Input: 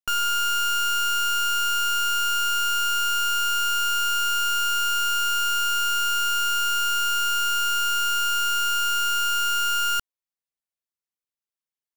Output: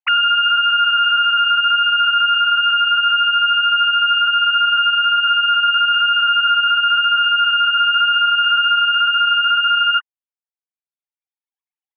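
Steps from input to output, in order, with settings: formants replaced by sine waves; reverb removal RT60 1.5 s; loudness maximiser +25 dB; trim -7.5 dB

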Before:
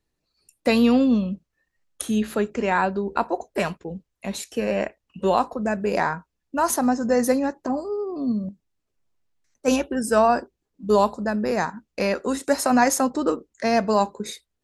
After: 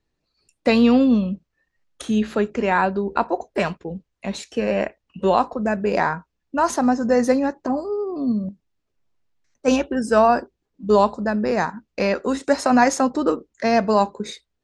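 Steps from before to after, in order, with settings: Bessel low-pass 5.6 kHz, order 4; trim +2.5 dB

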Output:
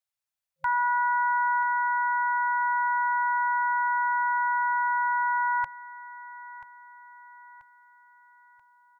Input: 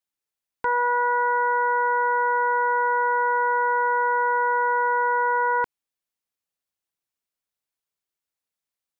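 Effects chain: FFT band-reject 160–530 Hz; feedback delay 984 ms, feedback 46%, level -15.5 dB; trim -2 dB

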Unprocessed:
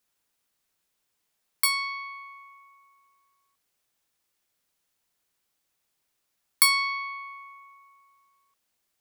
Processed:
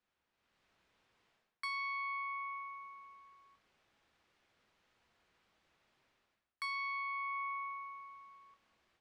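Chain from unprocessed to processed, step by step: level rider gain up to 11.5 dB; low-pass 2.8 kHz 12 dB/octave; reverse; compression 16:1, threshold -34 dBFS, peak gain reduction 17 dB; reverse; reverberation RT60 1.0 s, pre-delay 7 ms, DRR 10.5 dB; trim -2 dB

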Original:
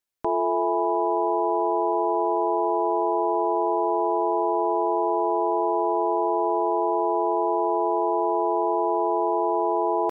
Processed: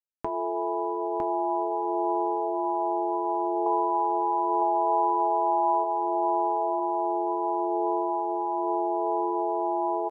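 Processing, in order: bit crusher 12-bit; 3.66–5.84 s: peaking EQ 1 kHz +10 dB 1.6 oct; compression 2.5:1, threshold -29 dBFS, peak gain reduction 10.5 dB; flange 0.24 Hz, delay 9.7 ms, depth 3.7 ms, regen -64%; delay 956 ms -3.5 dB; trim +4.5 dB

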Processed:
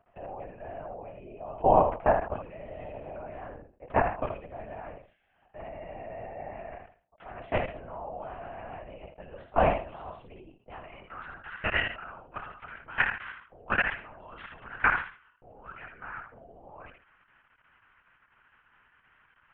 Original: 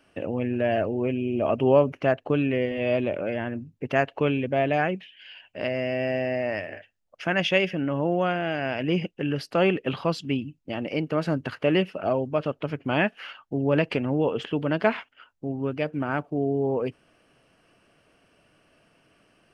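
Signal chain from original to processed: spectral peaks clipped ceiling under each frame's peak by 15 dB; level held to a coarse grid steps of 21 dB; distance through air 280 m; on a send: thinning echo 73 ms, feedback 21%, high-pass 380 Hz, level -5.5 dB; on the sum: band-pass sweep 710 Hz -> 1.5 kHz, 10.45–11.27 s; LPC vocoder at 8 kHz whisper; decay stretcher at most 140 dB/s; trim +8 dB

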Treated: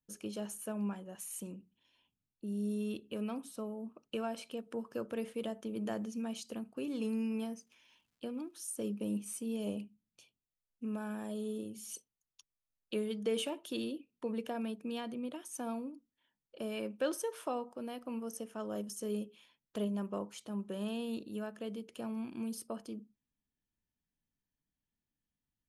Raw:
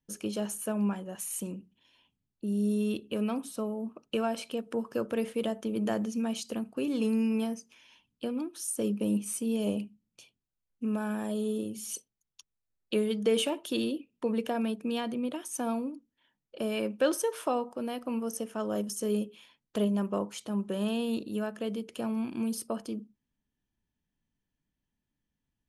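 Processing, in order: 7.41–9.56 s: crackle 350 per s -62 dBFS; trim -7.5 dB

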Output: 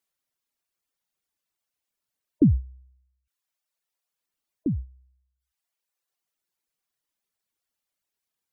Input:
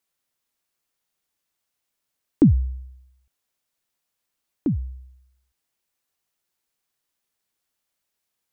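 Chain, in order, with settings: reverb removal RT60 1.1 s; spectral gate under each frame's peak -25 dB strong; trim -3 dB

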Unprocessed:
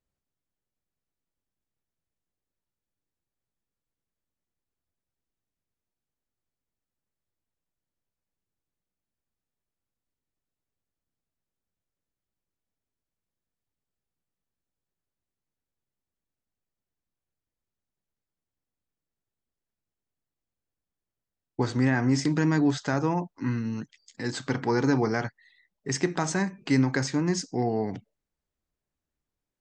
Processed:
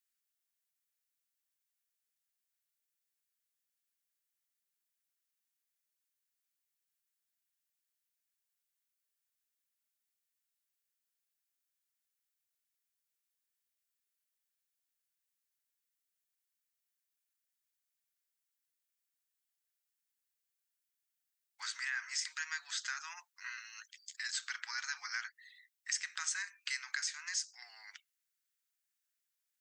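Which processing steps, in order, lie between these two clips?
steep high-pass 1.4 kHz 36 dB/octave; treble shelf 6.8 kHz +10.5 dB; compression 2:1, threshold -39 dBFS, peak gain reduction 9.5 dB

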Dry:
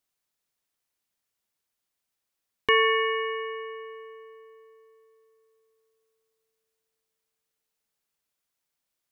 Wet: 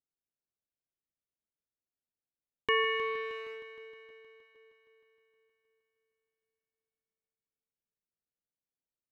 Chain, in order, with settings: local Wiener filter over 41 samples; 4.10–4.55 s: gate with hold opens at -46 dBFS; on a send: multi-head delay 156 ms, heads first and second, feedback 64%, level -15 dB; on the sum: trim -7 dB

